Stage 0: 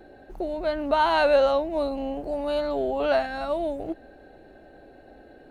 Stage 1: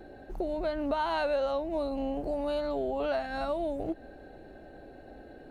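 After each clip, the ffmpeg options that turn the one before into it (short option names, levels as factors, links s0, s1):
-af "highshelf=f=3900:g=-7,acompressor=threshold=0.0316:ratio=3,bass=f=250:g=3,treble=f=4000:g=6"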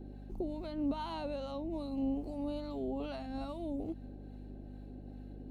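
-filter_complex "[0:a]acrossover=split=850[s0][s1];[s0]aeval=exprs='val(0)*(1-0.5/2+0.5/2*cos(2*PI*2.4*n/s))':c=same[s2];[s1]aeval=exprs='val(0)*(1-0.5/2-0.5/2*cos(2*PI*2.4*n/s))':c=same[s3];[s2][s3]amix=inputs=2:normalize=0,aeval=exprs='val(0)+0.00708*(sin(2*PI*50*n/s)+sin(2*PI*2*50*n/s)/2+sin(2*PI*3*50*n/s)/3+sin(2*PI*4*50*n/s)/4+sin(2*PI*5*50*n/s)/5)':c=same,equalizer=f=250:t=o:w=0.67:g=8,equalizer=f=630:t=o:w=0.67:g=-6,equalizer=f=1600:t=o:w=0.67:g=-11,volume=0.596"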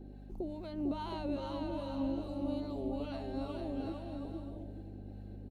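-af "aecho=1:1:450|720|882|979.2|1038:0.631|0.398|0.251|0.158|0.1,volume=0.794"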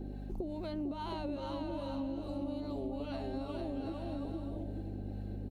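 -af "acompressor=threshold=0.00708:ratio=6,volume=2.37"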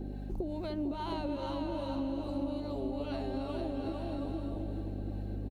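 -af "aecho=1:1:298|596|894|1192|1490|1788|2086:0.282|0.163|0.0948|0.055|0.0319|0.0185|0.0107,volume=1.33"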